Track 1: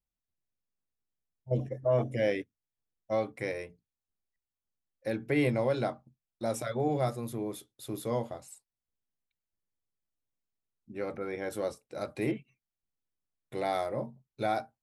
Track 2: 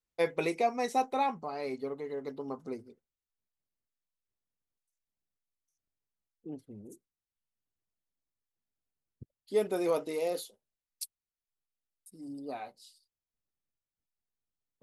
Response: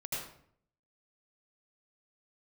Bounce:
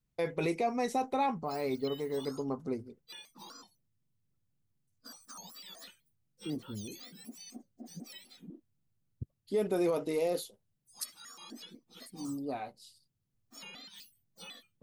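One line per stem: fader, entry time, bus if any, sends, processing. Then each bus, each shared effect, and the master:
-9.0 dB, 0.00 s, no send, spectrum inverted on a logarithmic axis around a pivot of 1.5 kHz; compression 6:1, threshold -38 dBFS, peak gain reduction 13 dB; vibrato with a chosen wave square 4 Hz, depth 250 cents
+0.5 dB, 0.00 s, no send, none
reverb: none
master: bass shelf 190 Hz +12 dB; peak limiter -22 dBFS, peak gain reduction 7.5 dB

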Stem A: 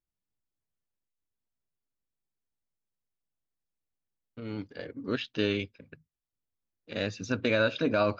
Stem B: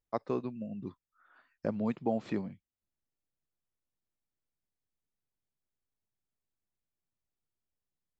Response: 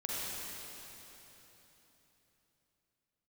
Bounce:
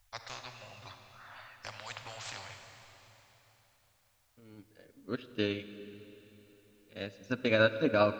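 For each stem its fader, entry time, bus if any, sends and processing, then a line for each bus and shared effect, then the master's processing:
+1.0 dB, 0.00 s, send -15.5 dB, upward expansion 2.5:1, over -36 dBFS
-6.5 dB, 0.00 s, send -6.5 dB, inverse Chebyshev band-stop 170–440 Hz, stop band 40 dB; spectrum-flattening compressor 4:1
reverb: on, RT60 3.7 s, pre-delay 39 ms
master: none

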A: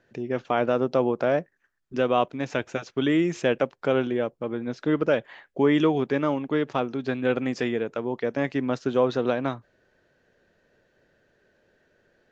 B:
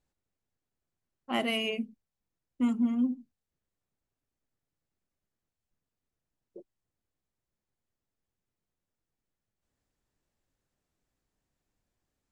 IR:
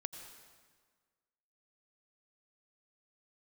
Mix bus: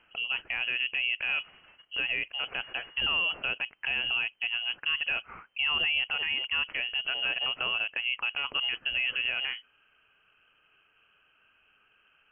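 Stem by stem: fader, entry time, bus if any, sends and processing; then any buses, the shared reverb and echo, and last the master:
-2.0 dB, 0.00 s, no send, treble shelf 2 kHz +6 dB
-11.0 dB, 0.00 s, no send, word length cut 8-bit, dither triangular; delay time shaken by noise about 1.4 kHz, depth 0.26 ms; auto duck -13 dB, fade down 0.30 s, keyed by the first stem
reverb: none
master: frequency inversion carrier 3.1 kHz; peak limiter -20 dBFS, peak gain reduction 10.5 dB

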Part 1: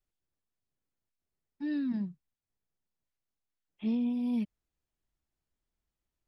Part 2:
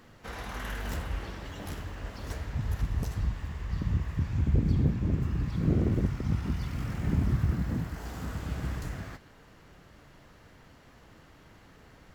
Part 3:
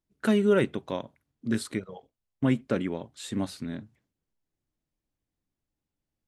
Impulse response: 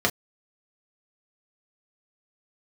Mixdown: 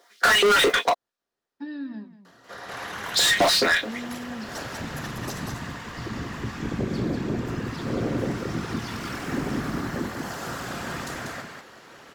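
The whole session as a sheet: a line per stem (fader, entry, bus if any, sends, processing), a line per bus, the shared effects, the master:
-14.0 dB, 0.00 s, send -18 dB, echo send -11.5 dB, compression 6:1, threshold -38 dBFS, peak gain reduction 10.5 dB; treble shelf 4.4 kHz -9 dB
-15.0 dB, 2.25 s, send -22.5 dB, echo send -4 dB, peaking EQ 9.2 kHz +3 dB 1.5 oct; whisper effect; auto duck -23 dB, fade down 1.10 s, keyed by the third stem
+1.0 dB, 0.00 s, muted 0.90–3.06 s, send -4 dB, no echo send, LFO high-pass saw up 4.7 Hz 460–5300 Hz; modulation noise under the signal 23 dB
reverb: on, pre-delay 3 ms
echo: delay 191 ms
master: overdrive pedal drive 31 dB, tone 6.9 kHz, clips at -6.5 dBFS; compression 2:1, threshold -21 dBFS, peak gain reduction 6 dB

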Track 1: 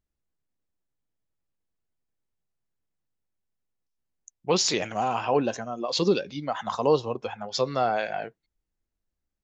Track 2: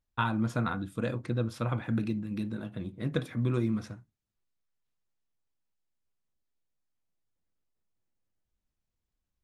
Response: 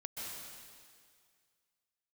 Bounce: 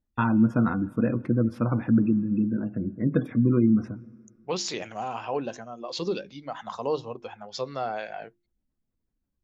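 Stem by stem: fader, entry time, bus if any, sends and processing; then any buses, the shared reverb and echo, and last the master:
-6.0 dB, 0.00 s, no send, hum notches 50/100/150/200/250/300/350 Hz
+2.5 dB, 0.00 s, send -21.5 dB, peaking EQ 3.9 kHz -11 dB 0.88 oct; spectral gate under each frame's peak -30 dB strong; graphic EQ 250/4000/8000 Hz +9/+4/-12 dB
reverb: on, RT60 2.0 s, pre-delay 118 ms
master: treble shelf 6.6 kHz -3.5 dB

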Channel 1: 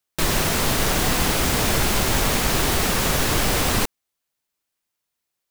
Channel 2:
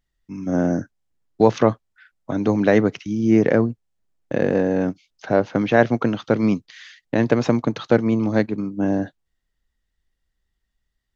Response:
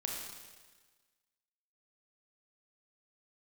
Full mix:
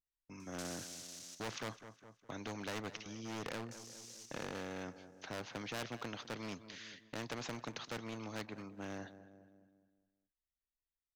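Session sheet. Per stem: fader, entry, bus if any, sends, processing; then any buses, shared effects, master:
-5.5 dB, 0.40 s, muted 1.35–3.71 s, no send, echo send -22.5 dB, upward compressor, threshold -36 dBFS; saturation -23.5 dBFS, distortion -9 dB; band-pass filter 6 kHz, Q 5.1; auto duck -16 dB, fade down 1.65 s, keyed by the second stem
-14.0 dB, 0.00 s, no send, echo send -23.5 dB, gate with hold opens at -37 dBFS; hard clipper -13.5 dBFS, distortion -10 dB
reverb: none
echo: feedback delay 206 ms, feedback 42%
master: spectrum-flattening compressor 2:1

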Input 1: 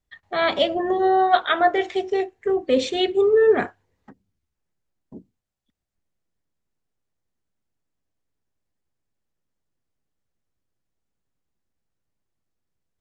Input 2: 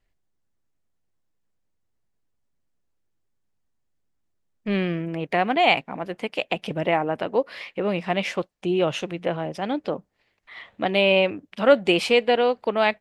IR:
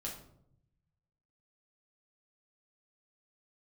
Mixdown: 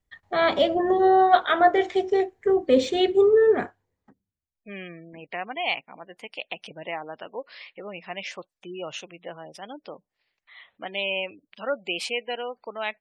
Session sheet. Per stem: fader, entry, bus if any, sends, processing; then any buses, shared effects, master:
+1.0 dB, 0.00 s, no send, de-esser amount 65%; treble shelf 2.6 kHz -12 dB; band-stop 2.7 kHz, Q 22; auto duck -17 dB, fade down 1.45 s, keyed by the second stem
-8.5 dB, 0.00 s, no send, spectral gate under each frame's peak -25 dB strong; bass shelf 440 Hz -10.5 dB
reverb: none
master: treble shelf 4 kHz +10.5 dB

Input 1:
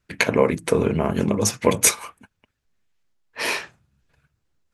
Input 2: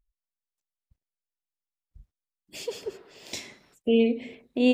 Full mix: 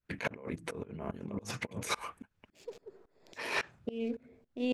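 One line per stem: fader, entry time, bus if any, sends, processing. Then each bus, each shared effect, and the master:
-3.0 dB, 0.00 s, no send, treble shelf 4.2 kHz -9.5 dB
-14.5 dB, 0.00 s, no send, local Wiener filter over 15 samples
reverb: none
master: compressor with a negative ratio -34 dBFS, ratio -1; tremolo saw up 3.6 Hz, depth 95%

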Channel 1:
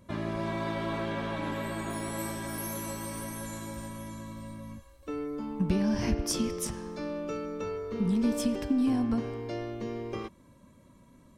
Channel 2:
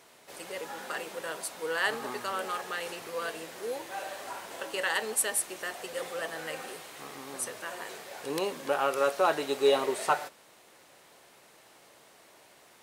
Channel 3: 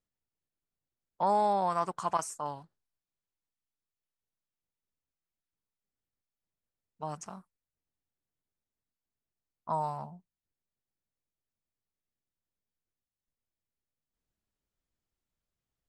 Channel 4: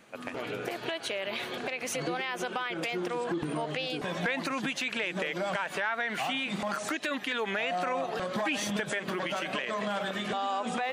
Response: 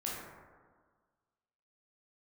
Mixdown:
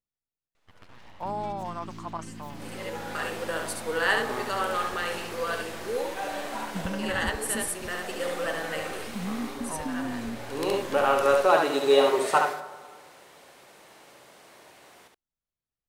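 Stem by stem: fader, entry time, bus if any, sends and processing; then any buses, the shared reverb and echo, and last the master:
-6.0 dB, 1.15 s, no send, no echo send, inverse Chebyshev low-pass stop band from 1.4 kHz, stop band 70 dB
+2.5 dB, 2.25 s, send -10 dB, echo send -3 dB, auto duck -13 dB, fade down 0.20 s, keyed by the third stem
-6.0 dB, 0.00 s, no send, no echo send, none
-13.0 dB, 0.55 s, no send, echo send -8.5 dB, full-wave rectifier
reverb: on, RT60 1.6 s, pre-delay 13 ms
echo: delay 70 ms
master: treble shelf 5.3 kHz -4.5 dB

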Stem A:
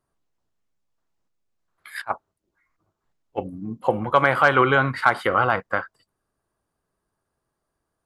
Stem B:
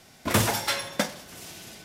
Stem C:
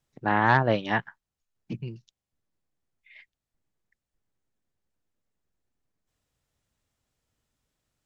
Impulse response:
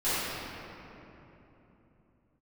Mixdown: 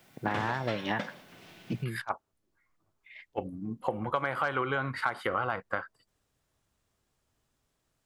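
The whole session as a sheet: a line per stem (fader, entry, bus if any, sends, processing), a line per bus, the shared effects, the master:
-5.0 dB, 0.00 s, no send, none
-6.5 dB, 0.00 s, no send, Chebyshev band-pass 130–2800 Hz, order 2; word length cut 10-bit, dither triangular
+1.5 dB, 0.00 s, no send, compression, threshold -24 dBFS, peak gain reduction 10 dB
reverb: none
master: compression 6:1, threshold -26 dBFS, peak gain reduction 10 dB

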